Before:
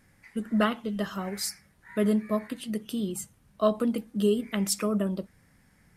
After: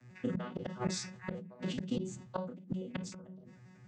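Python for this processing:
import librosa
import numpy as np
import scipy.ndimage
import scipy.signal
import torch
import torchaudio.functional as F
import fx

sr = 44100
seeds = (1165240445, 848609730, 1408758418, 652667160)

p1 = fx.vocoder_arp(x, sr, chord='bare fifth', root=47, every_ms=144)
p2 = p1 + fx.room_early_taps(p1, sr, ms=(26, 51, 80), db=(-11.0, -5.0, -8.0), dry=0)
p3 = fx.vibrato(p2, sr, rate_hz=5.2, depth_cents=7.7)
p4 = fx.high_shelf(p3, sr, hz=6000.0, db=9.0)
p5 = fx.hum_notches(p4, sr, base_hz=50, count=10)
p6 = fx.gate_flip(p5, sr, shuts_db=-27.0, range_db=-32)
p7 = fx.stretch_vocoder(p6, sr, factor=0.65)
p8 = fx.dynamic_eq(p7, sr, hz=190.0, q=0.78, threshold_db=-52.0, ratio=4.0, max_db=-4)
p9 = fx.sustainer(p8, sr, db_per_s=72.0)
y = p9 * 10.0 ** (9.0 / 20.0)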